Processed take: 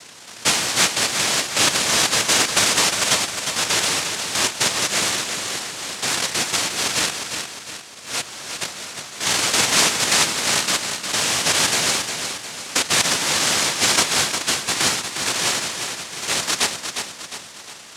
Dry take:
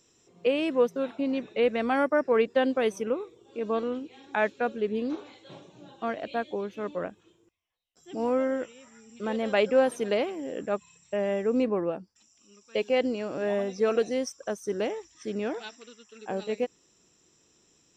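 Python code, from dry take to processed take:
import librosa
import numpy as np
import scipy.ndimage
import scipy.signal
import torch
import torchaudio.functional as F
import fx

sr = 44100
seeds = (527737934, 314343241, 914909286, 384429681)

p1 = fx.bin_compress(x, sr, power=0.4)
p2 = fx.highpass(p1, sr, hz=1500.0, slope=12, at=(8.2, 8.6), fade=0.02)
p3 = fx.noise_reduce_blind(p2, sr, reduce_db=8)
p4 = fx.noise_vocoder(p3, sr, seeds[0], bands=1)
p5 = p4 + fx.echo_feedback(p4, sr, ms=356, feedback_pct=47, wet_db=-7.0, dry=0)
y = F.gain(torch.from_numpy(p5), 1.0).numpy()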